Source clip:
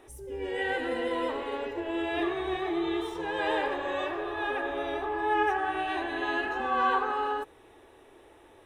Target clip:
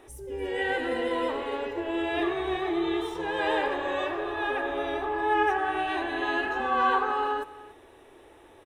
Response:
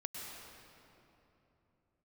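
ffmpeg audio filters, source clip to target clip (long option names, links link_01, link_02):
-af "aecho=1:1:286:0.119,volume=2dB"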